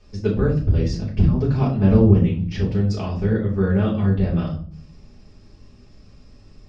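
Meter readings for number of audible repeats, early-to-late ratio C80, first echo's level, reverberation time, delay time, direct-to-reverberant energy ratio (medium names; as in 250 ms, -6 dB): no echo, 12.5 dB, no echo, 0.50 s, no echo, -7.0 dB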